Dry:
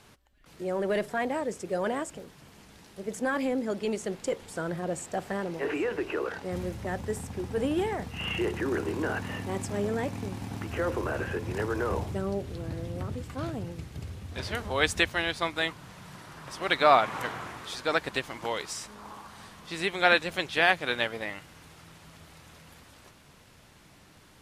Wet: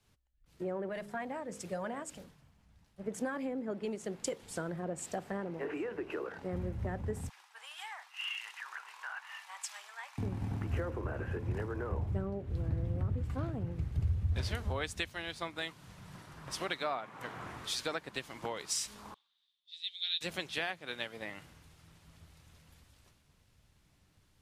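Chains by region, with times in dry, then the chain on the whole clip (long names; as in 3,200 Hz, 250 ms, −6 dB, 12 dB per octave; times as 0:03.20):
0:00.89–0:03.06: parametric band 380 Hz −9 dB 0.72 octaves + hum removal 51.42 Hz, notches 11 + one half of a high-frequency compander decoder only
0:07.29–0:10.18: Butterworth high-pass 910 Hz + high-shelf EQ 6,700 Hz −8 dB
0:19.14–0:20.21: resonant band-pass 3,600 Hz, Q 11 + floating-point word with a short mantissa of 6 bits
whole clip: downward compressor 6 to 1, threshold −37 dBFS; low-shelf EQ 150 Hz +9 dB; multiband upward and downward expander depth 100%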